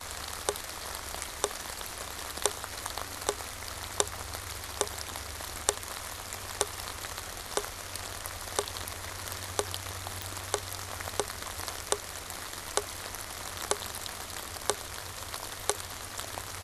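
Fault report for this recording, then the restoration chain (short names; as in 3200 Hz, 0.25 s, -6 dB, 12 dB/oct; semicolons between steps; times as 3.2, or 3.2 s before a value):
10.22 pop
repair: de-click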